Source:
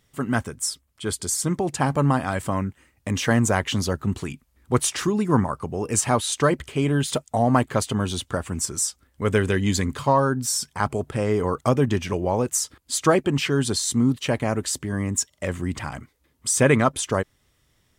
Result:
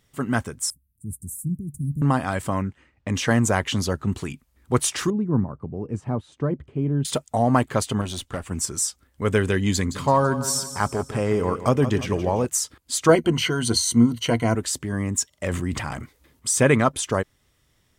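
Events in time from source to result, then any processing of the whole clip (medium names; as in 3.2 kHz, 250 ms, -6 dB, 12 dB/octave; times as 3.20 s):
0.70–2.02 s: inverse Chebyshev band-stop 760–3500 Hz, stop band 70 dB
2.62–4.09 s: level-controlled noise filter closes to 2.6 kHz, open at -20 dBFS
5.10–7.05 s: band-pass filter 150 Hz, Q 0.67
8.01–8.51 s: valve stage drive 19 dB, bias 0.6
9.74–12.45 s: feedback delay 167 ms, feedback 48%, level -12 dB
13.08–14.55 s: rippled EQ curve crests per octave 1.9, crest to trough 12 dB
15.46–16.54 s: transient shaper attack 0 dB, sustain +8 dB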